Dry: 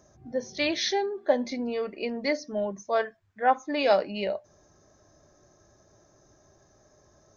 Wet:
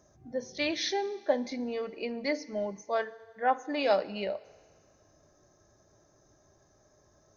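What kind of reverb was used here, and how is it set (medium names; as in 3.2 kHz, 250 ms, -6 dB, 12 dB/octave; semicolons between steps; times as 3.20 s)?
FDN reverb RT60 1.8 s, low-frequency decay 0.7×, high-frequency decay 1×, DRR 16.5 dB; trim -4 dB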